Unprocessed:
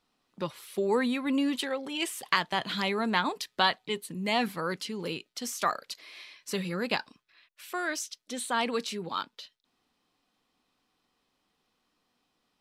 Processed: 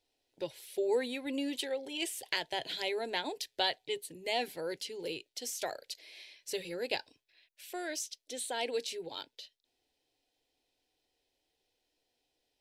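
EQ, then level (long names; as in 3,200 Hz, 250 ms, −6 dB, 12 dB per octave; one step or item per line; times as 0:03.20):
phaser with its sweep stopped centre 490 Hz, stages 4
−2.0 dB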